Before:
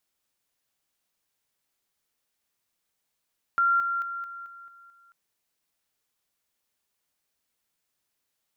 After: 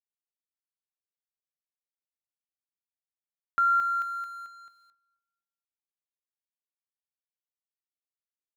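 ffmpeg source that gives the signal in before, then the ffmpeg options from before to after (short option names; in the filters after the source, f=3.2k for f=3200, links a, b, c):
-f lavfi -i "aevalsrc='pow(10,(-19-6*floor(t/0.22))/20)*sin(2*PI*1380*t)':d=1.54:s=44100"
-filter_complex "[0:a]aeval=exprs='sgn(val(0))*max(abs(val(0))-0.00251,0)':c=same,asplit=2[a][b];[b]adelay=242,lowpass=f=1k:p=1,volume=-18dB,asplit=2[c][d];[d]adelay=242,lowpass=f=1k:p=1,volume=0.44,asplit=2[e][f];[f]adelay=242,lowpass=f=1k:p=1,volume=0.44,asplit=2[g][h];[h]adelay=242,lowpass=f=1k:p=1,volume=0.44[i];[a][c][e][g][i]amix=inputs=5:normalize=0"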